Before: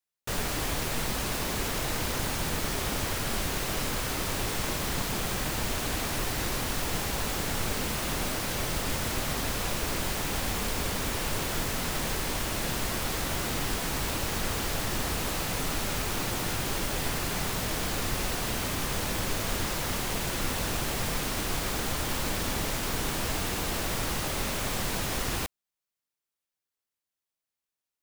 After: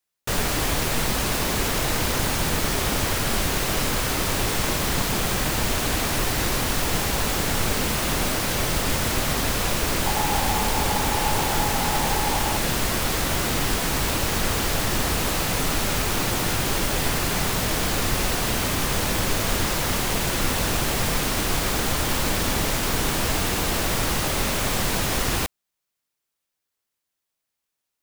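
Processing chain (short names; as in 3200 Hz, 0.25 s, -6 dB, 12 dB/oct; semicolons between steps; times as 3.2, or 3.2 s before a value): 10.06–12.57 bell 840 Hz +14 dB 0.21 oct; gain +7 dB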